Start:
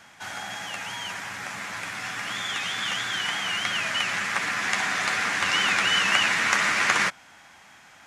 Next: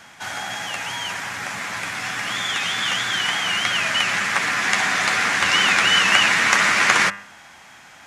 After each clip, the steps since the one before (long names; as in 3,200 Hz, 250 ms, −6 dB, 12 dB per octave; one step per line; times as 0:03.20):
hum removal 100 Hz, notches 28
level +6 dB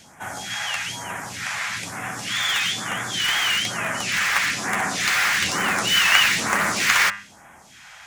all-pass phaser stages 2, 1.1 Hz, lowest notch 260–4,200 Hz
in parallel at −9 dB: wrap-around overflow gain 16.5 dB
on the sum: level −1 dB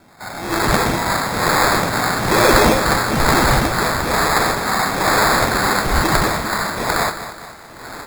automatic gain control gain up to 16 dB
decimation without filtering 15×
feedback echo at a low word length 210 ms, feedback 55%, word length 7 bits, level −11.5 dB
level −1 dB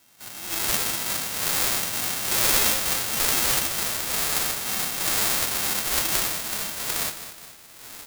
spectral envelope flattened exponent 0.1
level −8.5 dB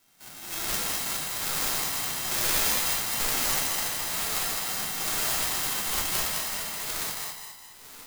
feedback echo with a high-pass in the loop 209 ms, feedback 34%, high-pass 350 Hz, level −3 dB
rectangular room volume 51 cubic metres, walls mixed, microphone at 0.46 metres
level −7 dB